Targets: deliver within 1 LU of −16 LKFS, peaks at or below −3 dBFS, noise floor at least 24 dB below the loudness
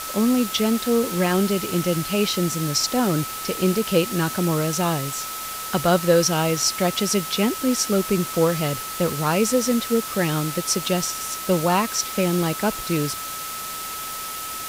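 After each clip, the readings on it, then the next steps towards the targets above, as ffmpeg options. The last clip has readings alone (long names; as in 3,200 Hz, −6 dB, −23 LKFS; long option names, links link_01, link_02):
interfering tone 1,300 Hz; level of the tone −33 dBFS; background noise floor −32 dBFS; target noise floor −46 dBFS; integrated loudness −22.0 LKFS; sample peak −6.0 dBFS; target loudness −16.0 LKFS
→ -af "bandreject=frequency=1300:width=30"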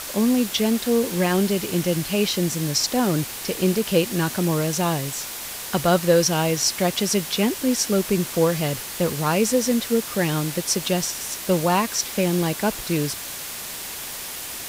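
interfering tone none found; background noise floor −33 dBFS; target noise floor −46 dBFS
→ -af "afftdn=noise_reduction=13:noise_floor=-33"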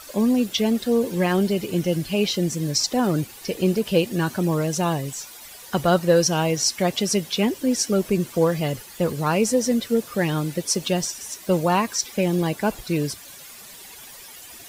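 background noise floor −43 dBFS; target noise floor −47 dBFS
→ -af "afftdn=noise_reduction=6:noise_floor=-43"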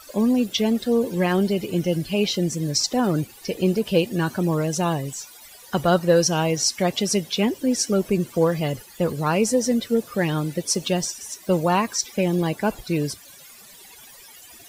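background noise floor −46 dBFS; target noise floor −47 dBFS
→ -af "afftdn=noise_reduction=6:noise_floor=-46"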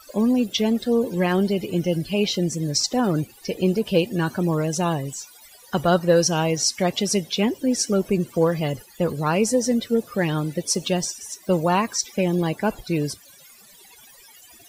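background noise floor −49 dBFS; integrated loudness −22.5 LKFS; sample peak −6.5 dBFS; target loudness −16.0 LKFS
→ -af "volume=6.5dB,alimiter=limit=-3dB:level=0:latency=1"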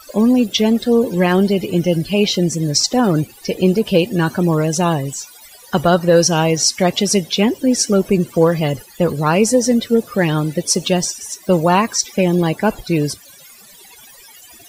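integrated loudness −16.0 LKFS; sample peak −3.0 dBFS; background noise floor −43 dBFS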